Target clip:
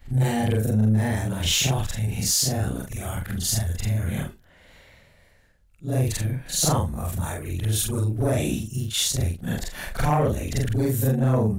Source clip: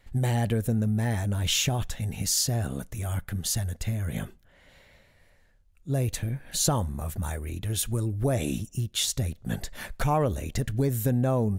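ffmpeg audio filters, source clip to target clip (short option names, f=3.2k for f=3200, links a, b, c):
-af "afftfilt=real='re':imag='-im':win_size=4096:overlap=0.75,aeval=exprs='0.2*sin(PI/2*1.78*val(0)/0.2)':c=same"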